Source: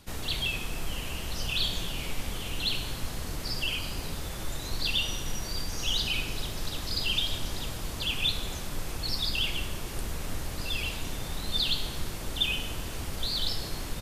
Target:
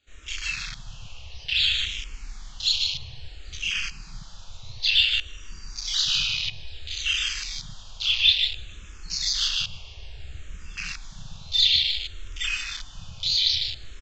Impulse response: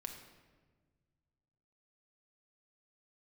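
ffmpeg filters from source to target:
-filter_complex "[0:a]bandreject=f=2000:w=21,asplit=2[s0][s1];[1:a]atrim=start_sample=2205,asetrate=23373,aresample=44100,adelay=28[s2];[s1][s2]afir=irnorm=-1:irlink=0,volume=1.06[s3];[s0][s3]amix=inputs=2:normalize=0,aresample=16000,aresample=44100,tiltshelf=f=780:g=-7.5,aecho=1:1:152|304|456|608|760|912|1064:0.562|0.309|0.17|0.0936|0.0515|0.0283|0.0156,afwtdn=0.0708,asplit=2[s4][s5];[s5]afreqshift=-0.58[s6];[s4][s6]amix=inputs=2:normalize=1"

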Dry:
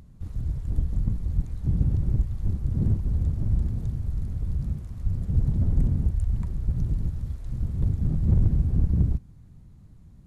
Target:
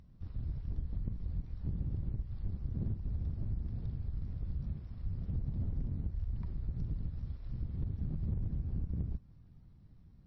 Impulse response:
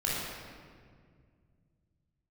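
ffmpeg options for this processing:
-af "aeval=exprs='if(lt(val(0),0),0.708*val(0),val(0))':c=same,acompressor=threshold=0.0631:ratio=5,volume=0.447" -ar 22050 -c:a libmp3lame -b:a 24k

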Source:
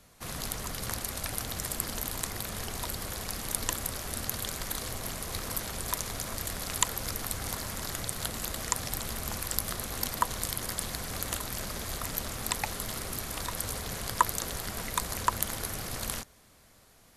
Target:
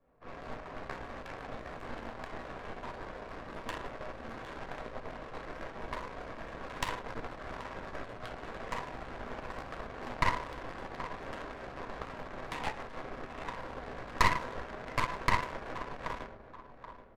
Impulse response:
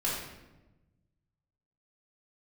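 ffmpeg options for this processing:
-filter_complex "[0:a]bass=f=250:g=-13,treble=f=4000:g=-13,aecho=1:1:779|1558|2337|3116|3895:0.299|0.134|0.0605|0.0272|0.0122[s0];[1:a]atrim=start_sample=2205,asetrate=70560,aresample=44100[s1];[s0][s1]afir=irnorm=-1:irlink=0,adynamicsmooth=sensitivity=4.5:basefreq=950,aeval=exprs='0.335*(cos(1*acos(clip(val(0)/0.335,-1,1)))-cos(1*PI/2))+0.119*(cos(6*acos(clip(val(0)/0.335,-1,1)))-cos(6*PI/2))':c=same,volume=0.596"

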